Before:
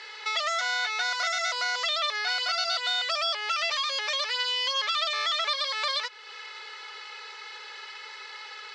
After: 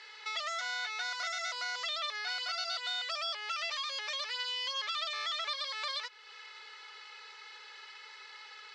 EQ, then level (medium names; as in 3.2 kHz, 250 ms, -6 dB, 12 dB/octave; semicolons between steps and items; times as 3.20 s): peaking EQ 510 Hz -3 dB 1.5 oct; -8.0 dB